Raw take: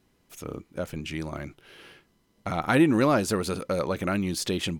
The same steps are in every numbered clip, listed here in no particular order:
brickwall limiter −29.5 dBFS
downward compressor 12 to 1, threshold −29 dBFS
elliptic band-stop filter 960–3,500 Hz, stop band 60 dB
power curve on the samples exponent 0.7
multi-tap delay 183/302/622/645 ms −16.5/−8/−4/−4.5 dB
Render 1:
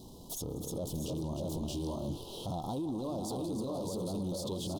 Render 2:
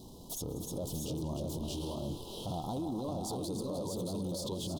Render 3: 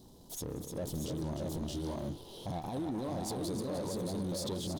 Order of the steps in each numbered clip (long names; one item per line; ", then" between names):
multi-tap delay, then power curve on the samples, then elliptic band-stop filter, then downward compressor, then brickwall limiter
power curve on the samples, then elliptic band-stop filter, then downward compressor, then multi-tap delay, then brickwall limiter
downward compressor, then multi-tap delay, then brickwall limiter, then elliptic band-stop filter, then power curve on the samples